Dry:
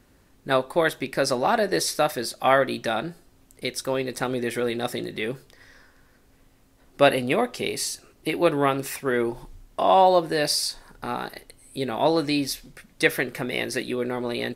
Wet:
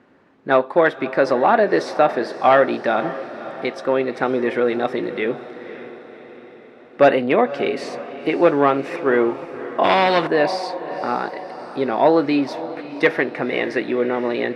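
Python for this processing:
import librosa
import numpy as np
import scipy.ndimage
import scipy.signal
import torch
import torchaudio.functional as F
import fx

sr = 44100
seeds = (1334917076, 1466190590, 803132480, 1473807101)

p1 = fx.fold_sine(x, sr, drive_db=6, ceiling_db=-3.0)
p2 = fx.bandpass_edges(p1, sr, low_hz=230.0, high_hz=2000.0)
p3 = p2 + fx.echo_diffused(p2, sr, ms=553, feedback_pct=55, wet_db=-14.0, dry=0)
p4 = fx.spectral_comp(p3, sr, ratio=2.0, at=(9.83, 10.26), fade=0.02)
y = F.gain(torch.from_numpy(p4), -2.0).numpy()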